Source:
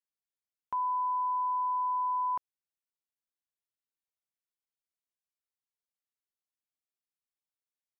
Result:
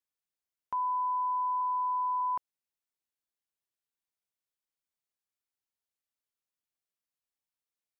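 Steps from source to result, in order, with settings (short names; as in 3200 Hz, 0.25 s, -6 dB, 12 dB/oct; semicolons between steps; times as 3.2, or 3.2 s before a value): 1.61–2.21 HPF 360 Hz 12 dB/oct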